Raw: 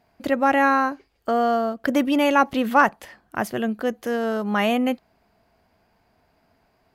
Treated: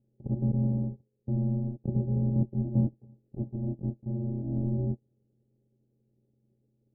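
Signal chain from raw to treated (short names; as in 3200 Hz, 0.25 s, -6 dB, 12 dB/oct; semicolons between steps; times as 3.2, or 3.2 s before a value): sample sorter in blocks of 128 samples; ring modulator 470 Hz; inverse Chebyshev low-pass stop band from 1300 Hz, stop band 60 dB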